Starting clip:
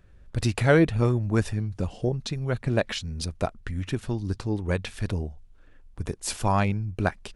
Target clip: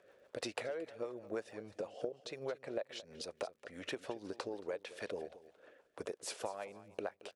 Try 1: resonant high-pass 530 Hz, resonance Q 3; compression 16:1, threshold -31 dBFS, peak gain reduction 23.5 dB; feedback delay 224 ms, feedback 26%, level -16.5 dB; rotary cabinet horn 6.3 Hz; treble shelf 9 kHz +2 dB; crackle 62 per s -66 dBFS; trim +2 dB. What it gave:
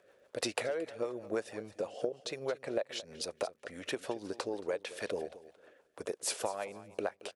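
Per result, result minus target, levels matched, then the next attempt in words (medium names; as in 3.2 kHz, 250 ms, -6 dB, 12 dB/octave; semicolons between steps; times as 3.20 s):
compression: peak gain reduction -5.5 dB; 8 kHz band +3.5 dB
resonant high-pass 530 Hz, resonance Q 3; compression 16:1, threshold -37 dBFS, peak gain reduction 29 dB; feedback delay 224 ms, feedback 26%, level -16.5 dB; rotary cabinet horn 6.3 Hz; treble shelf 9 kHz +2 dB; crackle 62 per s -66 dBFS; trim +2 dB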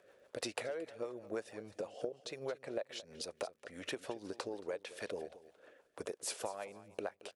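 8 kHz band +3.5 dB
resonant high-pass 530 Hz, resonance Q 3; compression 16:1, threshold -37 dBFS, peak gain reduction 29 dB; feedback delay 224 ms, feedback 26%, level -16.5 dB; rotary cabinet horn 6.3 Hz; treble shelf 9 kHz -8.5 dB; crackle 62 per s -66 dBFS; trim +2 dB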